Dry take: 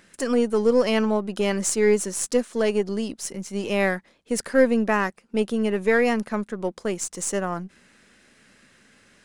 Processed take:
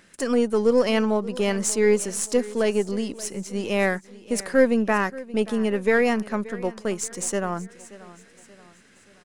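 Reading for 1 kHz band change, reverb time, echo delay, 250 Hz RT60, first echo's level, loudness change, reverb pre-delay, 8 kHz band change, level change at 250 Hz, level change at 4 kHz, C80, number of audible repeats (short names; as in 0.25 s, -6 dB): 0.0 dB, none, 0.579 s, none, -18.5 dB, 0.0 dB, none, 0.0 dB, 0.0 dB, 0.0 dB, none, 3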